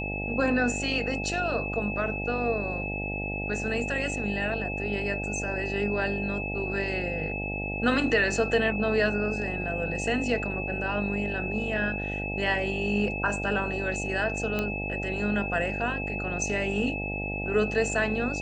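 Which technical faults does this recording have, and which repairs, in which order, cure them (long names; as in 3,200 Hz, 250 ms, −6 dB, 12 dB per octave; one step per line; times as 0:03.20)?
mains buzz 50 Hz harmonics 17 −34 dBFS
whistle 2,600 Hz −33 dBFS
0:14.59: click −15 dBFS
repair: click removal
hum removal 50 Hz, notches 17
notch filter 2,600 Hz, Q 30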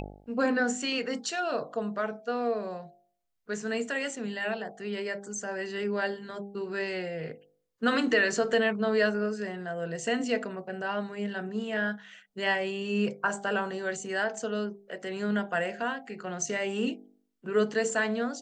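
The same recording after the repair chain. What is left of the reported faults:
none of them is left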